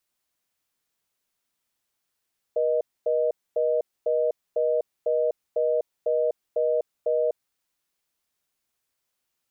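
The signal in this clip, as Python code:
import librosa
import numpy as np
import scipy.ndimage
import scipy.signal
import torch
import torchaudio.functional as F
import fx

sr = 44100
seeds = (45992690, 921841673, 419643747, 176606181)

y = fx.call_progress(sr, length_s=4.86, kind='reorder tone', level_db=-23.0)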